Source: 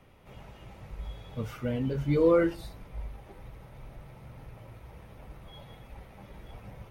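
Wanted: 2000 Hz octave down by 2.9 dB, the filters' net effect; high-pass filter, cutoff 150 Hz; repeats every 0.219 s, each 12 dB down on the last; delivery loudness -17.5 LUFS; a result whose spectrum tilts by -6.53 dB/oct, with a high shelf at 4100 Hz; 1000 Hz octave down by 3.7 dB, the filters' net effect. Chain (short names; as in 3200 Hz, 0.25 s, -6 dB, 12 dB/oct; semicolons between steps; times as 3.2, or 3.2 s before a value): HPF 150 Hz; bell 1000 Hz -4 dB; bell 2000 Hz -4 dB; high shelf 4100 Hz +8 dB; feedback echo 0.219 s, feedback 25%, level -12 dB; gain +11.5 dB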